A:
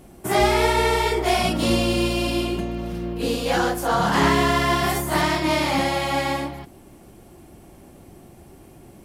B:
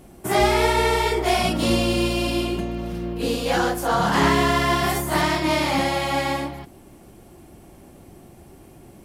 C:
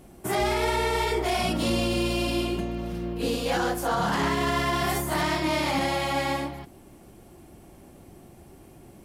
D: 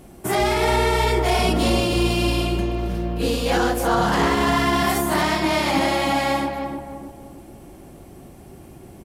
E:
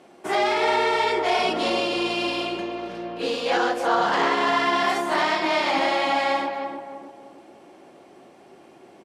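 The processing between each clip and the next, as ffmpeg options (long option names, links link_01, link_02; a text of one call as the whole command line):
ffmpeg -i in.wav -af anull out.wav
ffmpeg -i in.wav -af "alimiter=limit=-13.5dB:level=0:latency=1:release=31,volume=-3dB" out.wav
ffmpeg -i in.wav -filter_complex "[0:a]asplit=2[link_01][link_02];[link_02]adelay=307,lowpass=frequency=870:poles=1,volume=-4dB,asplit=2[link_03][link_04];[link_04]adelay=307,lowpass=frequency=870:poles=1,volume=0.49,asplit=2[link_05][link_06];[link_06]adelay=307,lowpass=frequency=870:poles=1,volume=0.49,asplit=2[link_07][link_08];[link_08]adelay=307,lowpass=frequency=870:poles=1,volume=0.49,asplit=2[link_09][link_10];[link_10]adelay=307,lowpass=frequency=870:poles=1,volume=0.49,asplit=2[link_11][link_12];[link_12]adelay=307,lowpass=frequency=870:poles=1,volume=0.49[link_13];[link_01][link_03][link_05][link_07][link_09][link_11][link_13]amix=inputs=7:normalize=0,volume=5dB" out.wav
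ffmpeg -i in.wav -af "highpass=410,lowpass=4700" out.wav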